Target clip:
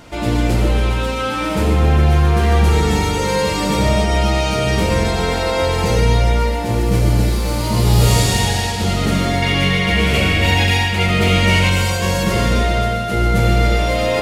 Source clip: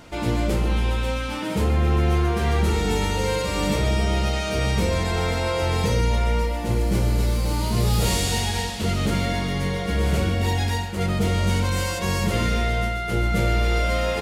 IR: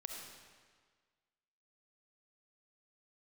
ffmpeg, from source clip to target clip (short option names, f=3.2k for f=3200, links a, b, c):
-filter_complex "[0:a]asettb=1/sr,asplit=3[a][b][c];[a]atrim=end=9.424[d];[b]atrim=start=9.42:end=11.7,asetpts=PTS-STARTPTS,afade=t=in:d=0.004:c=qsin,afade=t=out:st=2.276:d=0.004:c=qsin,equalizer=f=2.5k:t=o:w=1:g=12.5[e];[c]atrim=start=11.696[f];[d][e]acrossfade=d=0.004:c1=hsin:c2=qsin[g];[g][f]acrossfade=d=0.004:c1=qsin:c2=hsin[h];[1:a]atrim=start_sample=2205[i];[h][i]afir=irnorm=-1:irlink=0,volume=8.5dB"